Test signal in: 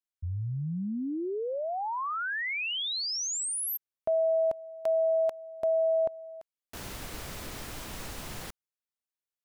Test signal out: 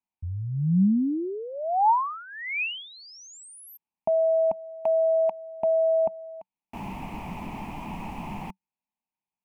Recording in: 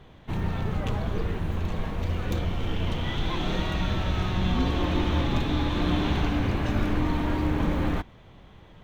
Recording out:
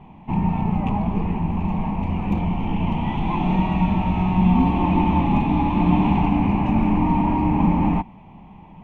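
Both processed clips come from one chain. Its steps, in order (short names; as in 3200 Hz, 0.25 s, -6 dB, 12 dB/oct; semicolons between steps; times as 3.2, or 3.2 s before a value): EQ curve 120 Hz 0 dB, 190 Hz +13 dB, 520 Hz -6 dB, 890 Hz +14 dB, 1500 Hz -14 dB, 2500 Hz +5 dB, 3700 Hz -16 dB; gain +1.5 dB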